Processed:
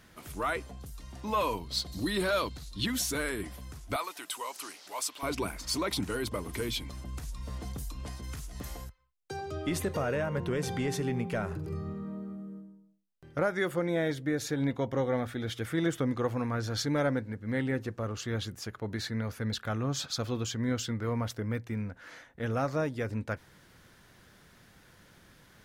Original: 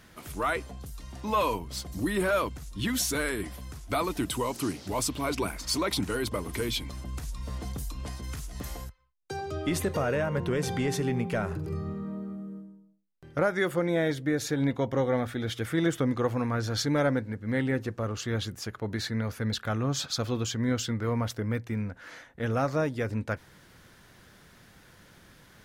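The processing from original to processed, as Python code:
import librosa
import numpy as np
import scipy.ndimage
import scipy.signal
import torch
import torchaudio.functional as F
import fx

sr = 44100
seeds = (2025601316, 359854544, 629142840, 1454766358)

y = fx.peak_eq(x, sr, hz=4100.0, db=13.5, octaves=0.51, at=(1.57, 2.86))
y = fx.highpass(y, sr, hz=830.0, slope=12, at=(3.96, 5.23))
y = F.gain(torch.from_numpy(y), -3.0).numpy()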